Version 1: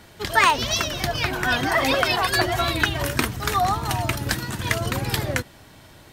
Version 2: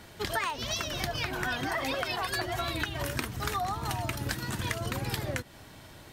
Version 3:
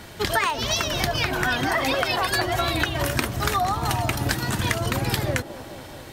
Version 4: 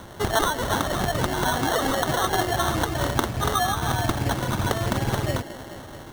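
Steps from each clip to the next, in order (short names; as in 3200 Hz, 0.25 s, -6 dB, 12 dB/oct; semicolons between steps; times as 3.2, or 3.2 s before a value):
compressor 6:1, threshold -27 dBFS, peak gain reduction 14 dB; gain -2 dB
band-limited delay 0.214 s, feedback 73%, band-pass 490 Hz, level -12 dB; gain +8.5 dB
notch 500 Hz, Q 12; sample-and-hold 18×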